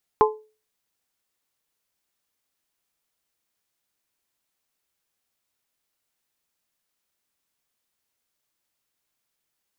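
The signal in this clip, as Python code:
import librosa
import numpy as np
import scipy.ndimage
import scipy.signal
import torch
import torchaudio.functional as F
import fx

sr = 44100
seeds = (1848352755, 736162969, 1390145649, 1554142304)

y = fx.strike_glass(sr, length_s=0.89, level_db=-12.5, body='bell', hz=431.0, decay_s=0.34, tilt_db=0.5, modes=3)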